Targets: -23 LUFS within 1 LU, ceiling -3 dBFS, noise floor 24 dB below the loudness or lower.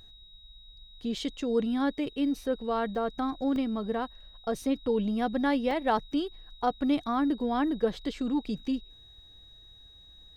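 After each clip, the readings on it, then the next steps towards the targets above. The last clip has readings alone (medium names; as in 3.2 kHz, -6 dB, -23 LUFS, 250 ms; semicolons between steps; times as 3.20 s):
dropouts 3; longest dropout 1.8 ms; steady tone 3.8 kHz; tone level -52 dBFS; loudness -30.0 LUFS; peak level -14.5 dBFS; loudness target -23.0 LUFS
-> interpolate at 2.95/3.56/5.71 s, 1.8 ms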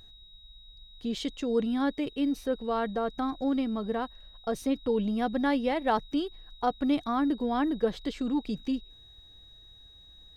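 dropouts 0; steady tone 3.8 kHz; tone level -52 dBFS
-> band-stop 3.8 kHz, Q 30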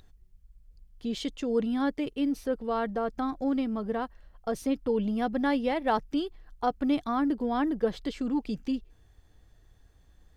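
steady tone not found; loudness -30.0 LUFS; peak level -14.5 dBFS; loudness target -23.0 LUFS
-> trim +7 dB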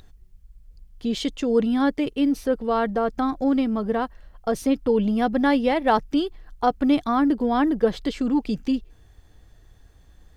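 loudness -23.0 LUFS; peak level -7.5 dBFS; noise floor -53 dBFS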